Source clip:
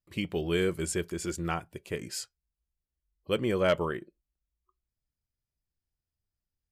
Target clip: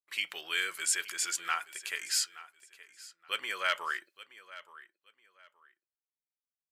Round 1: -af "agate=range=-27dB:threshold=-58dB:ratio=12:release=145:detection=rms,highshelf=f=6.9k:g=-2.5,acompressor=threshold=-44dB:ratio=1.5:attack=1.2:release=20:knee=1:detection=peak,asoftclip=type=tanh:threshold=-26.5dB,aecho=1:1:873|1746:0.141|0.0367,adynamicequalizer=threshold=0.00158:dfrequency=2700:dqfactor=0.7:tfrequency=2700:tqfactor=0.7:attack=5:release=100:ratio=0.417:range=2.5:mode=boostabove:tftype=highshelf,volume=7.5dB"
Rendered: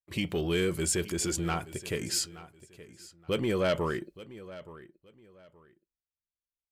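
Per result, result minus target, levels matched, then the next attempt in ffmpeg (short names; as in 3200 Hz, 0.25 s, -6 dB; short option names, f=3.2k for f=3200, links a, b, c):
soft clip: distortion +14 dB; 2000 Hz band -6.5 dB
-af "agate=range=-27dB:threshold=-58dB:ratio=12:release=145:detection=rms,highshelf=f=6.9k:g=-2.5,acompressor=threshold=-44dB:ratio=1.5:attack=1.2:release=20:knee=1:detection=peak,asoftclip=type=tanh:threshold=-17.5dB,aecho=1:1:873|1746:0.141|0.0367,adynamicequalizer=threshold=0.00158:dfrequency=2700:dqfactor=0.7:tfrequency=2700:tqfactor=0.7:attack=5:release=100:ratio=0.417:range=2.5:mode=boostabove:tftype=highshelf,volume=7.5dB"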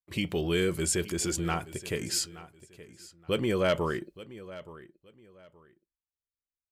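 2000 Hz band -6.5 dB
-af "agate=range=-27dB:threshold=-58dB:ratio=12:release=145:detection=rms,highshelf=f=6.9k:g=-2.5,acompressor=threshold=-44dB:ratio=1.5:attack=1.2:release=20:knee=1:detection=peak,highpass=f=1.5k:t=q:w=1.6,asoftclip=type=tanh:threshold=-17.5dB,aecho=1:1:873|1746:0.141|0.0367,adynamicequalizer=threshold=0.00158:dfrequency=2700:dqfactor=0.7:tfrequency=2700:tqfactor=0.7:attack=5:release=100:ratio=0.417:range=2.5:mode=boostabove:tftype=highshelf,volume=7.5dB"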